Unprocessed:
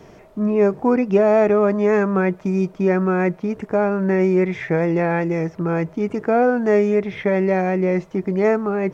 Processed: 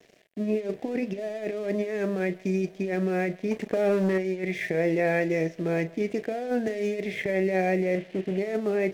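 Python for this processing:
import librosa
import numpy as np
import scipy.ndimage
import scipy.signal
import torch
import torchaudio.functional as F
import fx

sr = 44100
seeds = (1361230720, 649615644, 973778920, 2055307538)

y = fx.delta_mod(x, sr, bps=16000, step_db=-38.0, at=(7.95, 8.38))
y = fx.over_compress(y, sr, threshold_db=-19.0, ratio=-0.5)
y = scipy.signal.sosfilt(scipy.signal.butter(2, 110.0, 'highpass', fs=sr, output='sos'), y)
y = fx.doubler(y, sr, ms=37.0, db=-14)
y = y + 10.0 ** (-22.0 / 20.0) * np.pad(y, (int(157 * sr / 1000.0), 0))[:len(y)]
y = np.sign(y) * np.maximum(np.abs(y) - 10.0 ** (-41.5 / 20.0), 0.0)
y = fx.band_shelf(y, sr, hz=1100.0, db=-15.0, octaves=1.0)
y = fx.leveller(y, sr, passes=1, at=(3.51, 4.18))
y = fx.low_shelf(y, sr, hz=270.0, db=-11.0)
y = fx.band_squash(y, sr, depth_pct=70, at=(6.67, 7.26))
y = y * librosa.db_to_amplitude(-1.5)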